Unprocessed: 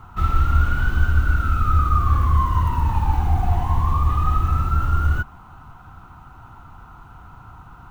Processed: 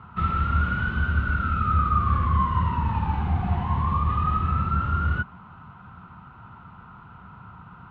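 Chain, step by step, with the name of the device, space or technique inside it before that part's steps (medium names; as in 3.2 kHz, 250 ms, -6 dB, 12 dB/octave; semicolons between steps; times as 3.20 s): guitar cabinet (cabinet simulation 95–3400 Hz, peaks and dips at 190 Hz +8 dB, 310 Hz -7 dB, 760 Hz -7 dB)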